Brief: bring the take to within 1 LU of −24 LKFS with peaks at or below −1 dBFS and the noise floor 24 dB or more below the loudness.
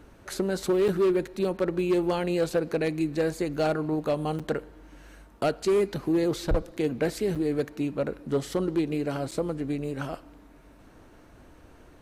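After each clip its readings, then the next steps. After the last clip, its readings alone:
share of clipped samples 1.1%; peaks flattened at −18.5 dBFS; number of dropouts 4; longest dropout 6.4 ms; integrated loudness −28.0 LKFS; sample peak −18.5 dBFS; target loudness −24.0 LKFS
→ clipped peaks rebuilt −18.5 dBFS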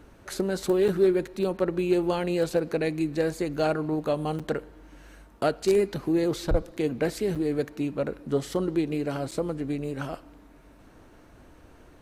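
share of clipped samples 0.0%; number of dropouts 4; longest dropout 6.4 ms
→ repair the gap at 0:00.88/0:04.39/0:07.35/0:09.31, 6.4 ms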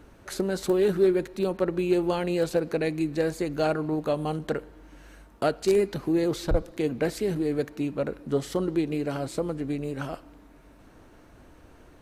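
number of dropouts 0; integrated loudness −27.5 LKFS; sample peak −9.5 dBFS; target loudness −24.0 LKFS
→ level +3.5 dB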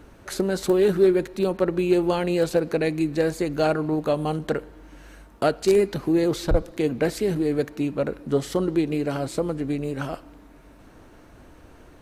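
integrated loudness −24.0 LKFS; sample peak −6.0 dBFS; background noise floor −50 dBFS

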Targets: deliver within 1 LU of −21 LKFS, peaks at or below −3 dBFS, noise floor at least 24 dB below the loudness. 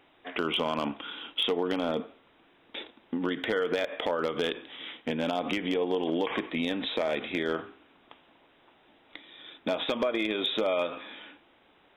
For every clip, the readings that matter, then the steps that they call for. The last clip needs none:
share of clipped samples 0.2%; peaks flattened at −19.0 dBFS; integrated loudness −30.5 LKFS; sample peak −19.0 dBFS; target loudness −21.0 LKFS
→ clipped peaks rebuilt −19 dBFS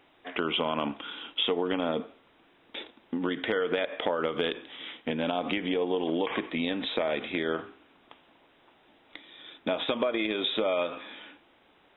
share of clipped samples 0.0%; integrated loudness −30.0 LKFS; sample peak −13.5 dBFS; target loudness −21.0 LKFS
→ level +9 dB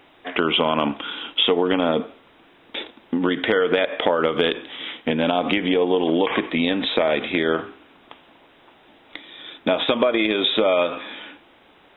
integrated loudness −21.0 LKFS; sample peak −4.5 dBFS; background noise floor −53 dBFS

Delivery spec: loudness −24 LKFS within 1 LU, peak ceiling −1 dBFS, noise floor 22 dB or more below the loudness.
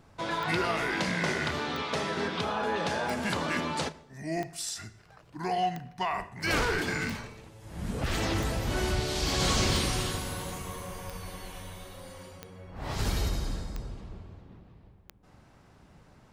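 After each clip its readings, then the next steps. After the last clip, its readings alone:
number of clicks 12; integrated loudness −31.0 LKFS; sample peak −15.0 dBFS; target loudness −24.0 LKFS
→ click removal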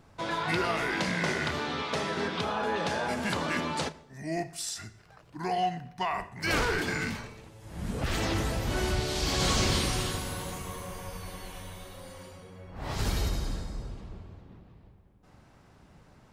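number of clicks 0; integrated loudness −31.0 LKFS; sample peak −15.0 dBFS; target loudness −24.0 LKFS
→ level +7 dB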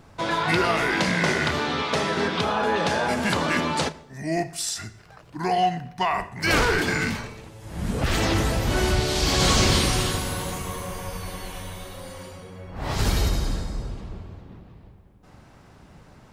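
integrated loudness −24.0 LKFS; sample peak −8.0 dBFS; background noise floor −51 dBFS

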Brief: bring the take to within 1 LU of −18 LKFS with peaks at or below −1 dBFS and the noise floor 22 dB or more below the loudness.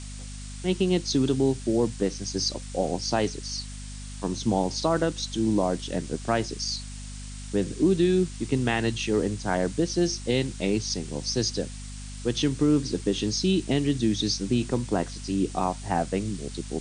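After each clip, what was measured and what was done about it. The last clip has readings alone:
mains hum 50 Hz; hum harmonics up to 250 Hz; level of the hum −36 dBFS; background noise floor −38 dBFS; target noise floor −49 dBFS; integrated loudness −26.5 LKFS; sample peak −11.0 dBFS; target loudness −18.0 LKFS
→ hum removal 50 Hz, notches 5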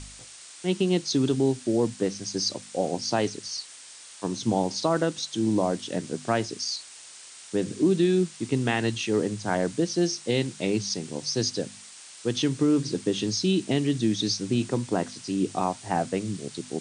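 mains hum none found; background noise floor −46 dBFS; target noise floor −49 dBFS
→ noise reduction from a noise print 6 dB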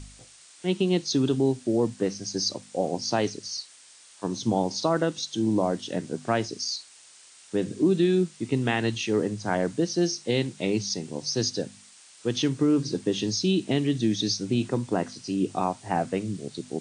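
background noise floor −52 dBFS; integrated loudness −27.0 LKFS; sample peak −10.5 dBFS; target loudness −18.0 LKFS
→ level +9 dB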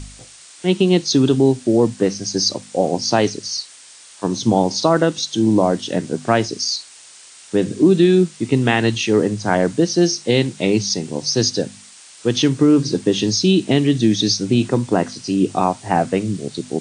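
integrated loudness −18.0 LKFS; sample peak −1.5 dBFS; background noise floor −43 dBFS

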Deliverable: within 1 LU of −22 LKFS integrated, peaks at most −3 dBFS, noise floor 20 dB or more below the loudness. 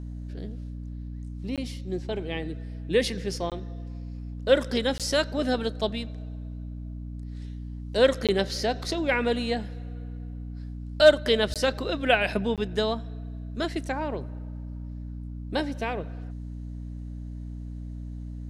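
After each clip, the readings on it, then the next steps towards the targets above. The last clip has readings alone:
number of dropouts 6; longest dropout 17 ms; mains hum 60 Hz; hum harmonics up to 300 Hz; level of the hum −34 dBFS; integrated loudness −27.0 LKFS; sample peak −6.0 dBFS; target loudness −22.0 LKFS
→ repair the gap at 0:01.56/0:03.50/0:04.98/0:08.27/0:11.54/0:12.56, 17 ms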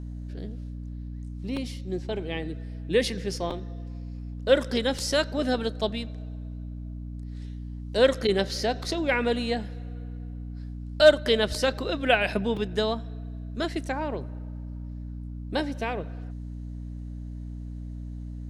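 number of dropouts 0; mains hum 60 Hz; hum harmonics up to 300 Hz; level of the hum −34 dBFS
→ hum removal 60 Hz, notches 5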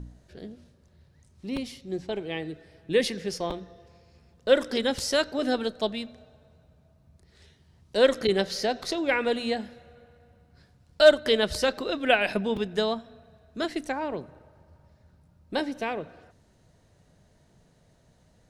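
mains hum none found; integrated loudness −26.5 LKFS; sample peak −6.5 dBFS; target loudness −22.0 LKFS
→ level +4.5 dB
brickwall limiter −3 dBFS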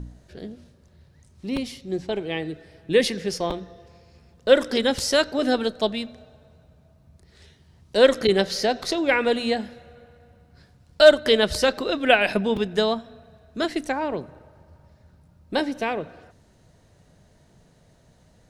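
integrated loudness −22.5 LKFS; sample peak −3.0 dBFS; background noise floor −58 dBFS

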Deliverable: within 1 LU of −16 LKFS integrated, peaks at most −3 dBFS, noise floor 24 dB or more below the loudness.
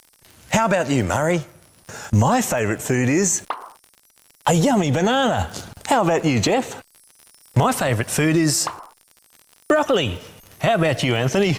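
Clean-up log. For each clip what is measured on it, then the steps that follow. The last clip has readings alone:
crackle rate 55 per second; integrated loudness −20.0 LKFS; sample peak −5.5 dBFS; target loudness −16.0 LKFS
→ click removal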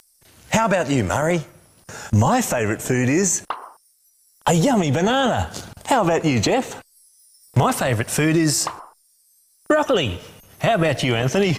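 crackle rate 0.17 per second; integrated loudness −20.0 LKFS; sample peak −5.5 dBFS; target loudness −16.0 LKFS
→ level +4 dB
brickwall limiter −3 dBFS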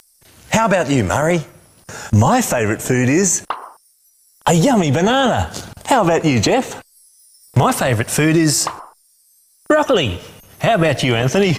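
integrated loudness −16.0 LKFS; sample peak −3.0 dBFS; background noise floor −56 dBFS

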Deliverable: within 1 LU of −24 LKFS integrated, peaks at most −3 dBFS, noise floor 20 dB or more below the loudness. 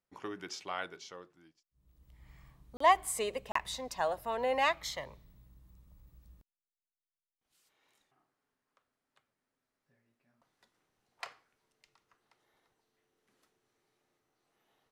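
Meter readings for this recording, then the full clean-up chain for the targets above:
number of dropouts 2; longest dropout 34 ms; integrated loudness −33.0 LKFS; sample peak −13.5 dBFS; target loudness −24.0 LKFS
→ repair the gap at 0:02.77/0:03.52, 34 ms
level +9 dB

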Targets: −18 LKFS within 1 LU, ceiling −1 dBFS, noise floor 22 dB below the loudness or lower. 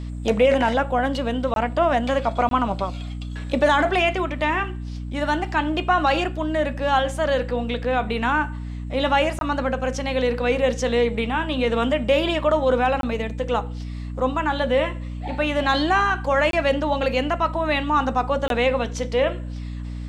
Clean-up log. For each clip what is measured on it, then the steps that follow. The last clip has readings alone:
number of dropouts 6; longest dropout 22 ms; mains hum 60 Hz; hum harmonics up to 300 Hz; level of the hum −28 dBFS; integrated loudness −22.0 LKFS; sample peak −7.5 dBFS; target loudness −18.0 LKFS
→ repair the gap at 0:01.54/0:02.49/0:09.39/0:13.01/0:16.51/0:18.48, 22 ms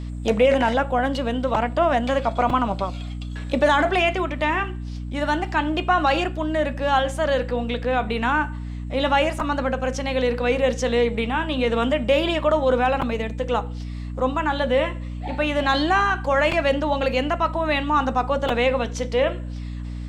number of dropouts 0; mains hum 60 Hz; hum harmonics up to 300 Hz; level of the hum −28 dBFS
→ mains-hum notches 60/120/180/240/300 Hz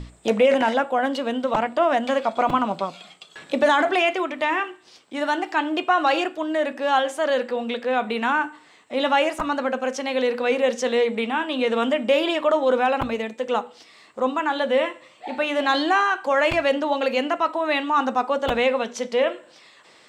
mains hum none found; integrated loudness −22.5 LKFS; sample peak −8.0 dBFS; target loudness −18.0 LKFS
→ level +4.5 dB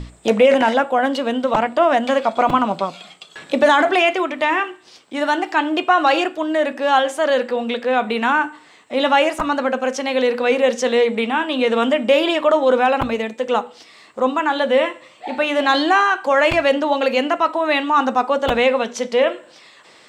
integrated loudness −18.0 LKFS; sample peak −3.5 dBFS; background noise floor −48 dBFS

